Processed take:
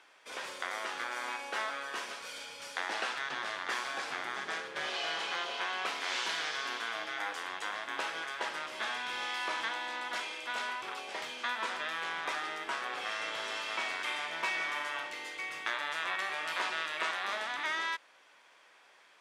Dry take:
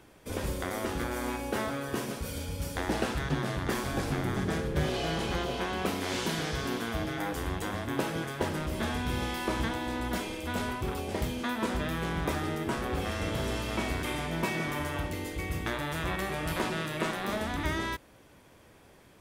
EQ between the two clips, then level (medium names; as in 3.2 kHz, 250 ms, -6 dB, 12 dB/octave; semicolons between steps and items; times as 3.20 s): high-pass 1.1 kHz 12 dB/octave; distance through air 87 m; +3.5 dB